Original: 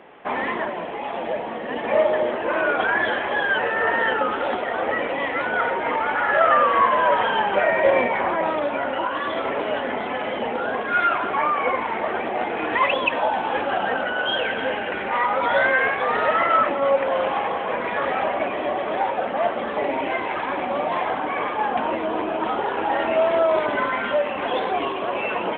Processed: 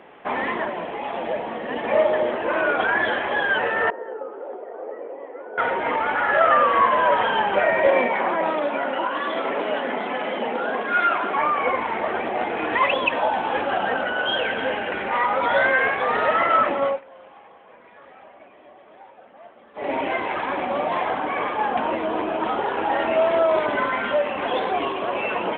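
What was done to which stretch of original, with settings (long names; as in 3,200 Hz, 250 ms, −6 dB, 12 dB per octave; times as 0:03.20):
0:03.90–0:05.58: four-pole ladder band-pass 480 Hz, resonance 55%
0:07.87–0:11.38: Butterworth high-pass 160 Hz
0:16.83–0:19.92: duck −23.5 dB, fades 0.18 s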